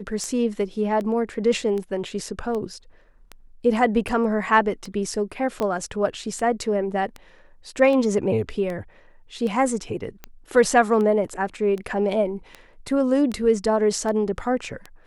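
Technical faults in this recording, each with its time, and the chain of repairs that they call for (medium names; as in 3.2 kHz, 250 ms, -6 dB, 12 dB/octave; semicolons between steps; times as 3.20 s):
tick 78 rpm -19 dBFS
5.60 s: pop -12 dBFS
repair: de-click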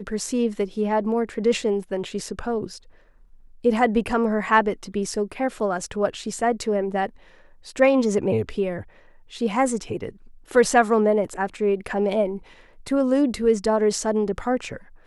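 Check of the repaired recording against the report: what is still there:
5.60 s: pop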